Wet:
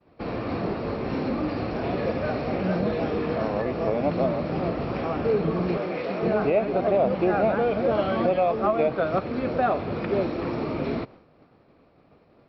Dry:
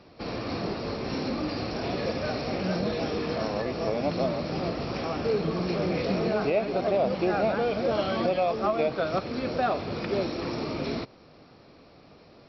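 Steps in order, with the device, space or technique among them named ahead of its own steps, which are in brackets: hearing-loss simulation (low-pass 3 kHz 12 dB/octave; expander -46 dBFS); 5.77–6.23 s: high-pass 560 Hz 6 dB/octave; treble shelf 3.7 kHz -7.5 dB; trim +3.5 dB

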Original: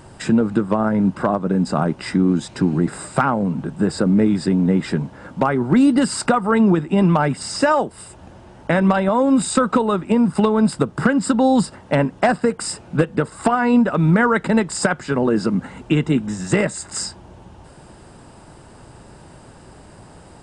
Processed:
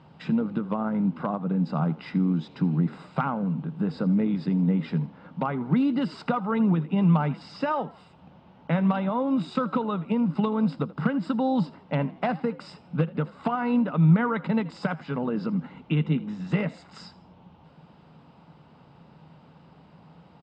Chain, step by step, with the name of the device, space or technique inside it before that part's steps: frequency-shifting delay pedal into a guitar cabinet (frequency-shifting echo 81 ms, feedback 41%, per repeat +54 Hz, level -19.5 dB; cabinet simulation 110–3900 Hz, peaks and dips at 110 Hz -8 dB, 160 Hz +9 dB, 360 Hz -9 dB, 620 Hz -4 dB, 1.7 kHz -8 dB); trim -8 dB

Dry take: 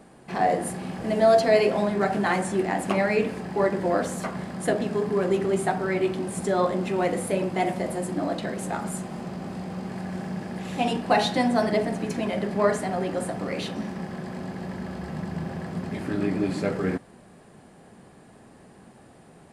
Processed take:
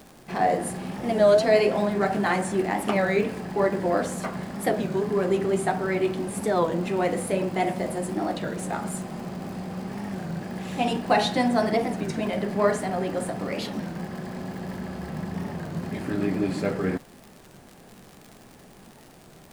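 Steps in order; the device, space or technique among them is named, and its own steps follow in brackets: warped LP (warped record 33 1/3 rpm, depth 160 cents; crackle 100 per s -36 dBFS; pink noise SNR 31 dB)

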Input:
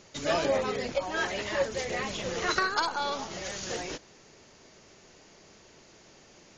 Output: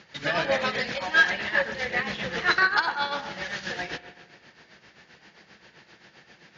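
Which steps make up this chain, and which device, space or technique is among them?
combo amplifier with spring reverb and tremolo (spring tank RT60 1.5 s, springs 42/56 ms, chirp 50 ms, DRR 10.5 dB; tremolo 7.6 Hz, depth 65%; cabinet simulation 86–4500 Hz, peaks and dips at 98 Hz -10 dB, 270 Hz -7 dB, 400 Hz -9 dB, 610 Hz -7 dB, 1.1 kHz -4 dB, 1.7 kHz +8 dB); 0.51–1.30 s: treble shelf 3 kHz +10 dB; trim +7 dB

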